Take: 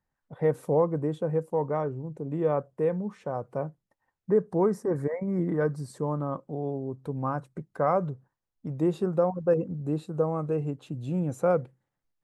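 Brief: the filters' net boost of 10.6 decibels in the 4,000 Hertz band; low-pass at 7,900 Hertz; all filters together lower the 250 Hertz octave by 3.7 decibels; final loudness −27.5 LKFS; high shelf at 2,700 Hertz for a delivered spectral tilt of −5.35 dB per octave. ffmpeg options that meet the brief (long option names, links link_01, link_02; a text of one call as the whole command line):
ffmpeg -i in.wav -af "lowpass=7900,equalizer=frequency=250:width_type=o:gain=-6.5,highshelf=frequency=2700:gain=6.5,equalizer=frequency=4000:width_type=o:gain=7.5,volume=3dB" out.wav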